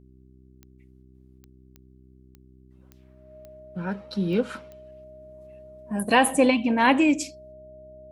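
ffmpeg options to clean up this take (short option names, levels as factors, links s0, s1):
-af "adeclick=t=4,bandreject=f=64.2:t=h:w=4,bandreject=f=128.4:t=h:w=4,bandreject=f=192.6:t=h:w=4,bandreject=f=256.8:t=h:w=4,bandreject=f=321:t=h:w=4,bandreject=f=385.2:t=h:w=4,bandreject=f=620:w=30"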